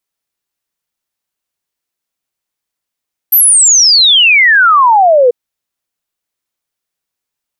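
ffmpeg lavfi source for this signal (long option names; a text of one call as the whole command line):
ffmpeg -f lavfi -i "aevalsrc='0.668*clip(min(t,1.99-t)/0.01,0,1)*sin(2*PI*13000*1.99/log(470/13000)*(exp(log(470/13000)*t/1.99)-1))':duration=1.99:sample_rate=44100" out.wav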